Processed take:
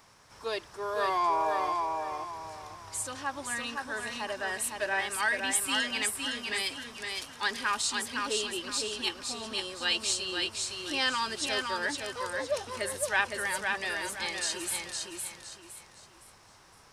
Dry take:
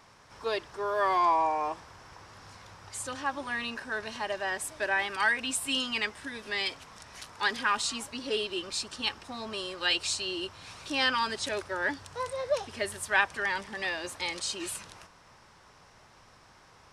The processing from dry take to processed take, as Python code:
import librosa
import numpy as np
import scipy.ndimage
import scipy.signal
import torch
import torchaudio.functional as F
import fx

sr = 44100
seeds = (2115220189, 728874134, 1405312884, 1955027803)

y = fx.high_shelf(x, sr, hz=7100.0, db=11.0)
y = fx.echo_feedback(y, sr, ms=512, feedback_pct=33, wet_db=-4.0)
y = F.gain(torch.from_numpy(y), -3.0).numpy()